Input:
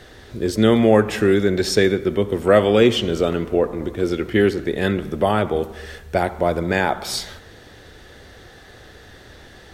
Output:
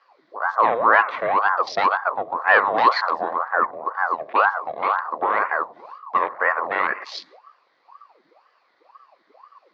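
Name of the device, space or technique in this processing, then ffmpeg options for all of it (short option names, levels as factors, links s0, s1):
voice changer toy: -af "afwtdn=0.0398,aeval=exprs='val(0)*sin(2*PI*730*n/s+730*0.7/2*sin(2*PI*2*n/s))':c=same,highpass=500,equalizer=f=520:t=q:w=4:g=4,equalizer=f=1100:t=q:w=4:g=10,equalizer=f=1900:t=q:w=4:g=6,equalizer=f=3000:t=q:w=4:g=-5,equalizer=f=4500:t=q:w=4:g=5,lowpass=f=4800:w=0.5412,lowpass=f=4800:w=1.3066,volume=0.794"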